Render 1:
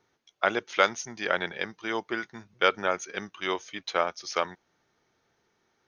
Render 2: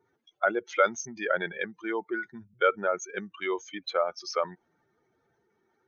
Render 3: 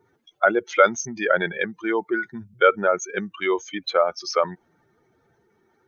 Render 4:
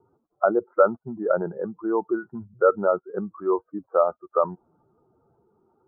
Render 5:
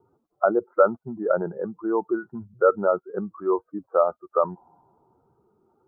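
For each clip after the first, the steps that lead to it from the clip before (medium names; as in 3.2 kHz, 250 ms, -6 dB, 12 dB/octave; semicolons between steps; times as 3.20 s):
spectral contrast enhancement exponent 2.1
bass shelf 180 Hz +5.5 dB; trim +7 dB
steep low-pass 1.3 kHz 72 dB/octave
spectral replace 4.58–5.57 s, 490–1300 Hz both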